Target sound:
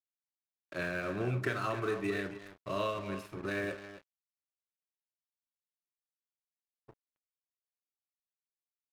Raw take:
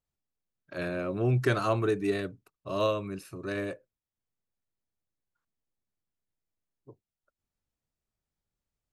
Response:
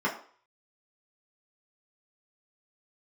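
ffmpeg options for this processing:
-filter_complex "[0:a]adynamicequalizer=threshold=0.00501:dfrequency=1900:dqfactor=0.99:tfrequency=1900:tqfactor=0.99:attack=5:release=100:ratio=0.375:range=4:mode=boostabove:tftype=bell,acrossover=split=90|4200[s0][s1][s2];[s0]acompressor=threshold=0.00224:ratio=4[s3];[s1]acompressor=threshold=0.0251:ratio=4[s4];[s2]acompressor=threshold=0.00158:ratio=4[s5];[s3][s4][s5]amix=inputs=3:normalize=0,asplit=2[s6][s7];[s7]adelay=268.2,volume=0.316,highshelf=f=4000:g=-6.04[s8];[s6][s8]amix=inputs=2:normalize=0,asplit=2[s9][s10];[1:a]atrim=start_sample=2205,highshelf=f=3100:g=12,adelay=32[s11];[s10][s11]afir=irnorm=-1:irlink=0,volume=0.0944[s12];[s9][s12]amix=inputs=2:normalize=0,aeval=exprs='sgn(val(0))*max(abs(val(0))-0.00376,0)':c=same"

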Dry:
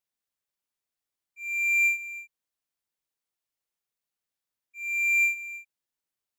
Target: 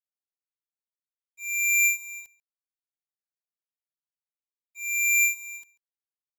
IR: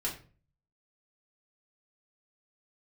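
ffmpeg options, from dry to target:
-filter_complex "[0:a]aexciter=amount=4.1:drive=5.8:freq=3100,aeval=exprs='sgn(val(0))*max(abs(val(0))-0.00422,0)':c=same,areverse,acompressor=mode=upward:threshold=0.00891:ratio=2.5,areverse,asplit=2[s0][s1];[s1]adelay=139.9,volume=0.0794,highshelf=f=4000:g=-3.15[s2];[s0][s2]amix=inputs=2:normalize=0"

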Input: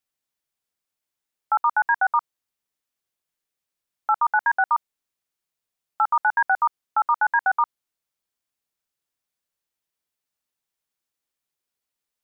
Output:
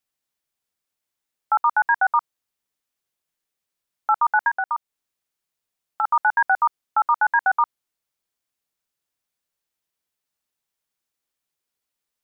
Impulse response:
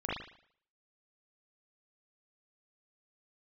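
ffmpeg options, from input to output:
-filter_complex "[0:a]asplit=3[s0][s1][s2];[s0]afade=t=out:st=4.48:d=0.02[s3];[s1]acompressor=threshold=0.0562:ratio=2.5,afade=t=in:st=4.48:d=0.02,afade=t=out:st=6.03:d=0.02[s4];[s2]afade=t=in:st=6.03:d=0.02[s5];[s3][s4][s5]amix=inputs=3:normalize=0,volume=1.19"

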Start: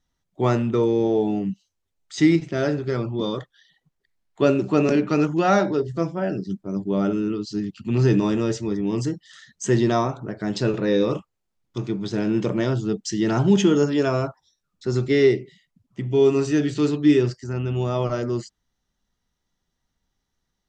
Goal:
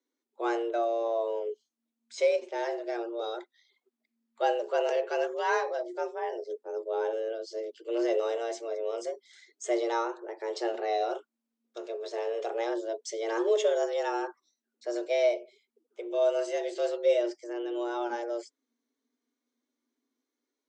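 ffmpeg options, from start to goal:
-af "afreqshift=230,flanger=delay=2.1:depth=2.4:regen=-56:speed=0.29:shape=sinusoidal,volume=0.562"

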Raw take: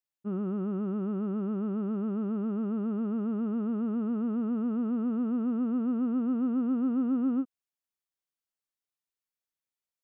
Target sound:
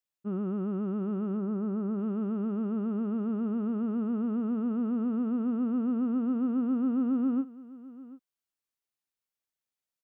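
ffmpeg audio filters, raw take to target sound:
-filter_complex "[0:a]asettb=1/sr,asplit=3[s0][s1][s2];[s0]atrim=end=1.374[s3];[s1]atrim=start=1.37:end=1.99,asetpts=PTS-STARTPTS,afade=t=in:d=0.004:c=qsin,afade=t=out:st=0.616:d=0.004:c=qsin,lowpass=2000[s4];[s2]atrim=start=1.986[s5];[s3][s4]acrossfade=d=0.004:c1=hsin:c2=qsin[s6];[s6][s5]acrossfade=d=0.004:c1=qsin:c2=hsin,aecho=1:1:741:0.119"

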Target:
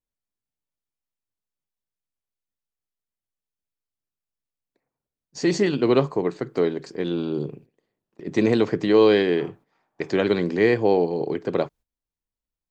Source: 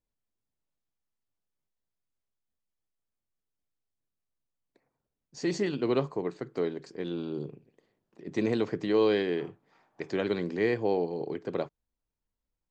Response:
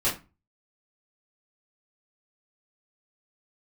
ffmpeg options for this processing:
-af "agate=range=0.224:threshold=0.002:ratio=16:detection=peak,volume=2.66"

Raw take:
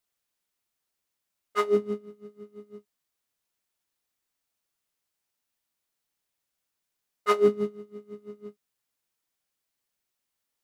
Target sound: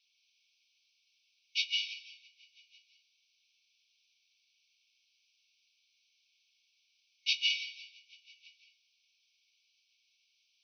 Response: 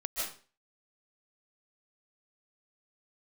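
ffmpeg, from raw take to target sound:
-filter_complex "[0:a]asplit=2[s0][s1];[1:a]atrim=start_sample=2205,asetrate=41013,aresample=44100[s2];[s1][s2]afir=irnorm=-1:irlink=0,volume=0.631[s3];[s0][s3]amix=inputs=2:normalize=0,asplit=2[s4][s5];[s5]highpass=f=720:p=1,volume=10,asoftclip=type=tanh:threshold=0.562[s6];[s4][s6]amix=inputs=2:normalize=0,lowpass=f=3300:p=1,volume=0.501,afftfilt=real='re*between(b*sr/4096,2200,6200)':imag='im*between(b*sr/4096,2200,6200)':win_size=4096:overlap=0.75"

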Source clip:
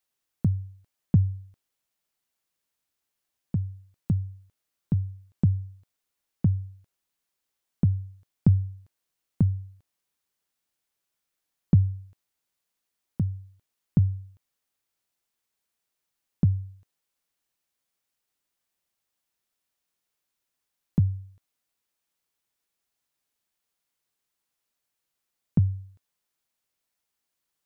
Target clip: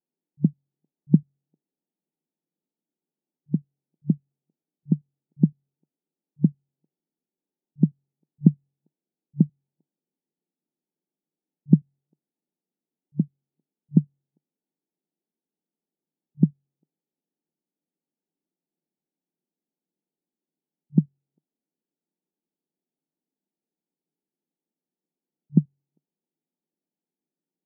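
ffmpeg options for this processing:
-af "afftfilt=real='re*between(b*sr/4096,150,930)':imag='im*between(b*sr/4096,150,930)':win_size=4096:overlap=0.75,lowshelf=f=460:t=q:w=1.5:g=10,volume=0.631"

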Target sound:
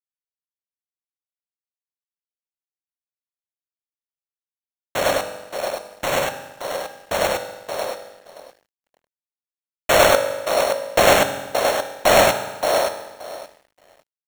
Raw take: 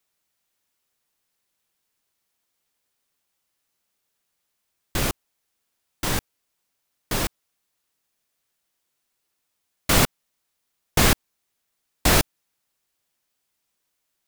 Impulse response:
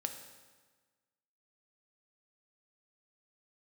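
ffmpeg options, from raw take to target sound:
-filter_complex "[0:a]highpass=f=590:t=q:w=4.9,asplit=2[s0][s1];[s1]adelay=574,lowpass=f=2000:p=1,volume=0.631,asplit=2[s2][s3];[s3]adelay=574,lowpass=f=2000:p=1,volume=0.21,asplit=2[s4][s5];[s5]adelay=574,lowpass=f=2000:p=1,volume=0.21[s6];[s0][s2][s4][s6]amix=inputs=4:normalize=0,acrusher=samples=9:mix=1:aa=0.000001,asplit=2[s7][s8];[1:a]atrim=start_sample=2205,adelay=100[s9];[s8][s9]afir=irnorm=-1:irlink=0,volume=1[s10];[s7][s10]amix=inputs=2:normalize=0,aeval=exprs='sgn(val(0))*max(abs(val(0))-0.00398,0)':c=same,volume=1.12"

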